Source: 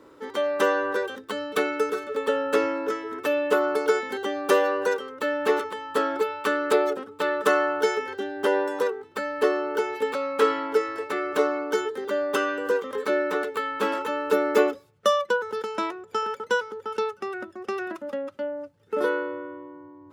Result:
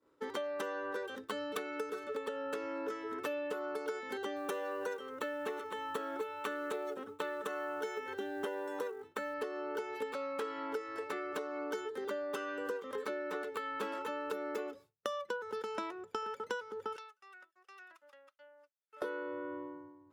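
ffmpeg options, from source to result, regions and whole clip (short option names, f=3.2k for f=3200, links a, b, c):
-filter_complex "[0:a]asettb=1/sr,asplit=3[a][b][c];[a]atrim=end=4.364[d];[b]atrim=start=4.36:end=9.34,asetpts=PTS-STARTPTS,afade=t=in:d=0.004:c=qsin,afade=t=out:st=4.976:d=0.004:c=qsin,bandreject=f=4.8k:w=5.3,acrusher=bits=8:mode=log:mix=0:aa=0.000001[e];[c]atrim=start=9.336[f];[d][e]acrossfade=d=0.004:c1=hsin:c2=qsin[g];[g][f]acrossfade=d=0.004:c1=qsin:c2=hsin,asettb=1/sr,asplit=3[h][i][j];[h]atrim=end=16.964[k];[i]atrim=start=16.96:end=19.02,asetpts=PTS-STARTPTS,afade=t=in:d=0.004:c=qsin,afade=t=out:st=2.056:d=0.004:c=qsin,highpass=1.2k,acompressor=threshold=-44dB:ratio=4:attack=3.2:release=140:knee=1:detection=peak[l];[j]atrim=start=19.016[m];[k][l]acrossfade=d=0.004:c1=hsin:c2=qsin[n];[n][m]acrossfade=d=0.004:c1=qsin:c2=hsin,alimiter=limit=-14dB:level=0:latency=1:release=313,agate=range=-33dB:threshold=-39dB:ratio=3:detection=peak,acompressor=threshold=-35dB:ratio=6,volume=-1.5dB"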